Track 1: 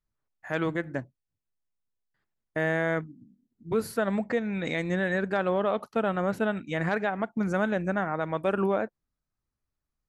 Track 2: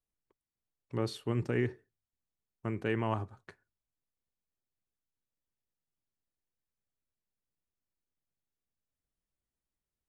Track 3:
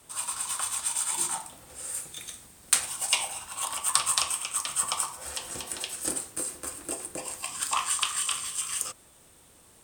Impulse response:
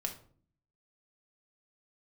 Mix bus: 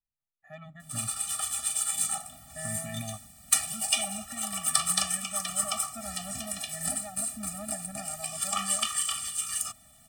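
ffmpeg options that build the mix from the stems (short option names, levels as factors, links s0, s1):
-filter_complex "[0:a]volume=0.224,asplit=2[s0][s1];[1:a]alimiter=limit=0.0631:level=0:latency=1,volume=0.891[s2];[2:a]adelay=800,volume=1.19[s3];[s1]apad=whole_len=444937[s4];[s2][s4]sidechaingate=range=0.0224:threshold=0.00141:ratio=16:detection=peak[s5];[s0][s5][s3]amix=inputs=3:normalize=0,highshelf=f=11000:g=6,afftfilt=real='re*eq(mod(floor(b*sr/1024/280),2),0)':imag='im*eq(mod(floor(b*sr/1024/280),2),0)':win_size=1024:overlap=0.75"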